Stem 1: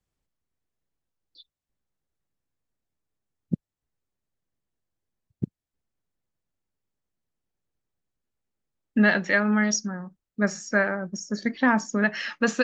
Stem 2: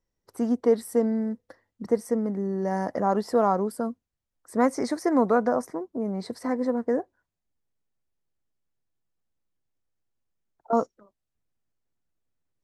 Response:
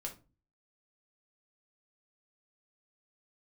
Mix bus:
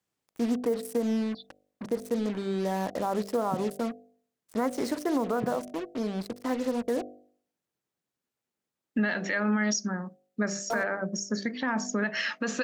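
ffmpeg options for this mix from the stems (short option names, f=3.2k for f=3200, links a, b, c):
-filter_complex "[0:a]highpass=170,volume=2.5dB[a];[1:a]acrusher=bits=5:mix=0:aa=0.5,volume=-1.5dB[b];[a][b]amix=inputs=2:normalize=0,bandreject=f=49.58:t=h:w=4,bandreject=f=99.16:t=h:w=4,bandreject=f=148.74:t=h:w=4,bandreject=f=198.32:t=h:w=4,bandreject=f=247.9:t=h:w=4,bandreject=f=297.48:t=h:w=4,bandreject=f=347.06:t=h:w=4,bandreject=f=396.64:t=h:w=4,bandreject=f=446.22:t=h:w=4,bandreject=f=495.8:t=h:w=4,bandreject=f=545.38:t=h:w=4,bandreject=f=594.96:t=h:w=4,bandreject=f=644.54:t=h:w=4,bandreject=f=694.12:t=h:w=4,bandreject=f=743.7:t=h:w=4,alimiter=limit=-18.5dB:level=0:latency=1:release=120"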